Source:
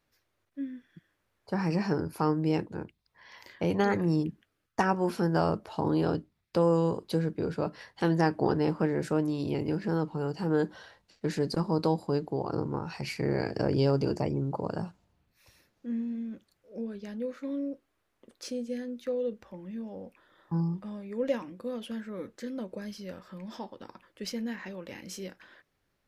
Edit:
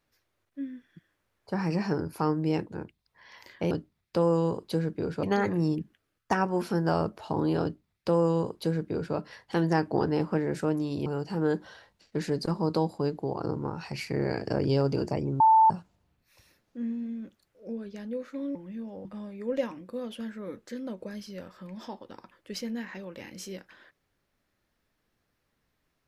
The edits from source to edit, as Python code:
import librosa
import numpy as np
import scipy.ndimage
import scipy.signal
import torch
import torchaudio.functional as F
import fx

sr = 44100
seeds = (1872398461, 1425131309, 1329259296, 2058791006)

y = fx.edit(x, sr, fx.duplicate(start_s=6.11, length_s=1.52, to_s=3.71),
    fx.cut(start_s=9.54, length_s=0.61),
    fx.bleep(start_s=14.49, length_s=0.3, hz=886.0, db=-15.0),
    fx.cut(start_s=17.64, length_s=1.9),
    fx.cut(start_s=20.04, length_s=0.72), tone=tone)